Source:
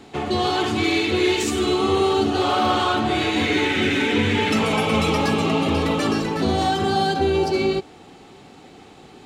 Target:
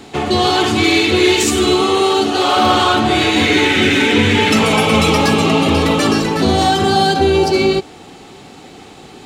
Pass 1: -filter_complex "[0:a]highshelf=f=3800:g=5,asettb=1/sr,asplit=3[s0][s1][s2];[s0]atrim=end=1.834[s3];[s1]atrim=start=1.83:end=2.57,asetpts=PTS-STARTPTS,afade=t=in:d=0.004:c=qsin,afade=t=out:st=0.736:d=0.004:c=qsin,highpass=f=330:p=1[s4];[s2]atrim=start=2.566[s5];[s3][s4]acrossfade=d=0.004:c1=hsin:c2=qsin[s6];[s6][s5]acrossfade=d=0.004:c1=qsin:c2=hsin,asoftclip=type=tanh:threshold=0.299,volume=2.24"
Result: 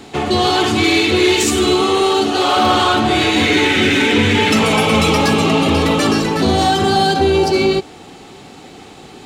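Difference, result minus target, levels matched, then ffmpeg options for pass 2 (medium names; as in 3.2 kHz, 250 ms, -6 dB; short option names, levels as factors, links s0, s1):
saturation: distortion +15 dB
-filter_complex "[0:a]highshelf=f=3800:g=5,asettb=1/sr,asplit=3[s0][s1][s2];[s0]atrim=end=1.834[s3];[s1]atrim=start=1.83:end=2.57,asetpts=PTS-STARTPTS,afade=t=in:d=0.004:c=qsin,afade=t=out:st=0.736:d=0.004:c=qsin,highpass=f=330:p=1[s4];[s2]atrim=start=2.566[s5];[s3][s4]acrossfade=d=0.004:c1=hsin:c2=qsin[s6];[s6][s5]acrossfade=d=0.004:c1=qsin:c2=hsin,asoftclip=type=tanh:threshold=0.794,volume=2.24"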